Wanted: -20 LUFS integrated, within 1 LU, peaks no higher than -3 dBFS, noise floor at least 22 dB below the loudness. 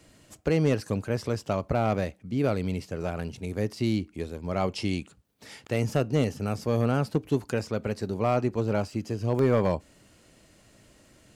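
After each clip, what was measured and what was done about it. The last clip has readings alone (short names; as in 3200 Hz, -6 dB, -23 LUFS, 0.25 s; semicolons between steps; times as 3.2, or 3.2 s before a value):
clipped 0.3%; flat tops at -14.5 dBFS; dropouts 1; longest dropout 2.1 ms; loudness -28.5 LUFS; peak -14.5 dBFS; loudness target -20.0 LUFS
-> clip repair -14.5 dBFS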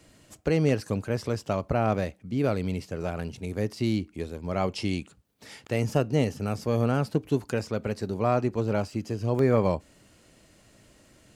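clipped 0.0%; dropouts 1; longest dropout 2.1 ms
-> interpolate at 9.39, 2.1 ms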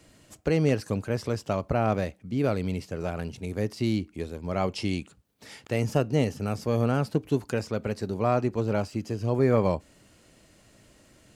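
dropouts 0; loudness -28.0 LUFS; peak -9.5 dBFS; loudness target -20.0 LUFS
-> gain +8 dB; limiter -3 dBFS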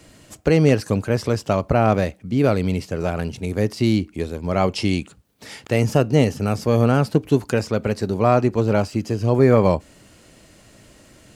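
loudness -20.0 LUFS; peak -3.0 dBFS; noise floor -51 dBFS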